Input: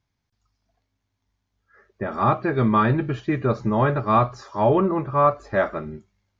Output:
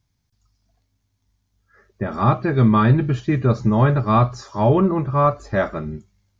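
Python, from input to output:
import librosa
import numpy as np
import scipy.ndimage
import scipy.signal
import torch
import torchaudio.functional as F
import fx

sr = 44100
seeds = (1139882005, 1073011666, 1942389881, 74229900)

y = fx.bass_treble(x, sr, bass_db=8, treble_db=9)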